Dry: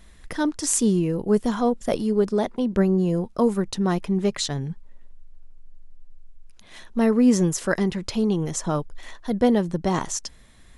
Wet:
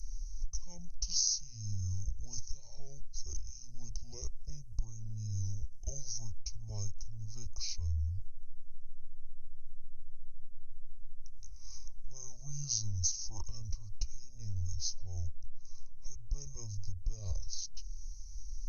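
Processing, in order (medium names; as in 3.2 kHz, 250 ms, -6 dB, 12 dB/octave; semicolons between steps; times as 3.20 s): inverse Chebyshev band-stop 200–6300 Hz, stop band 40 dB; compression 12:1, threshold -42 dBFS, peak gain reduction 14 dB; hum 60 Hz, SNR 33 dB; speed mistake 78 rpm record played at 45 rpm; trim +14 dB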